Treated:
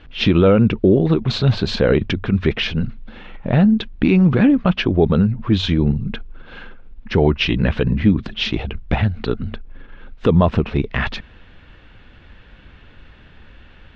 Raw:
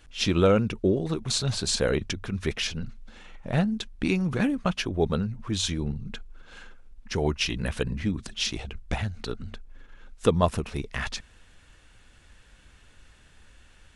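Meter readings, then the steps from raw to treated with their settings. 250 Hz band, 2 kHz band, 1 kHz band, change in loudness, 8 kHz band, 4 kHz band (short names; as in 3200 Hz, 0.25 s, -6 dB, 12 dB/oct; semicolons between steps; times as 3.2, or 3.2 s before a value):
+12.0 dB, +8.0 dB, +6.5 dB, +10.0 dB, under -10 dB, +5.5 dB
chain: LPF 3600 Hz 24 dB/oct; bell 210 Hz +5 dB 2.9 oct; maximiser +12.5 dB; gain -3.5 dB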